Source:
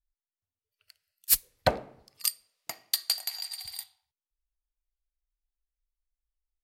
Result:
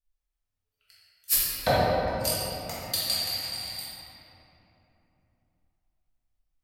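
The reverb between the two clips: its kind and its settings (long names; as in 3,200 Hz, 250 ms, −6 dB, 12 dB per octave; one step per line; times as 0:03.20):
rectangular room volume 180 cubic metres, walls hard, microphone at 1.6 metres
level −5.5 dB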